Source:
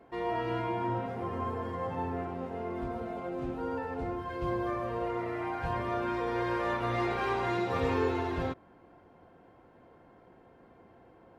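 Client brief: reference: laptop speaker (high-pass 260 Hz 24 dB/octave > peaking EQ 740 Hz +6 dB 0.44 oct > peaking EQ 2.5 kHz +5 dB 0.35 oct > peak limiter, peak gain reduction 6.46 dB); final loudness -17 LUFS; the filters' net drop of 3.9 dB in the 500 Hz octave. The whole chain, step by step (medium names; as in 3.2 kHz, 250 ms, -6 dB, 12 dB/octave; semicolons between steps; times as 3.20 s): high-pass 260 Hz 24 dB/octave; peaking EQ 500 Hz -8 dB; peaking EQ 740 Hz +6 dB 0.44 oct; peaking EQ 2.5 kHz +5 dB 0.35 oct; trim +20.5 dB; peak limiter -7.5 dBFS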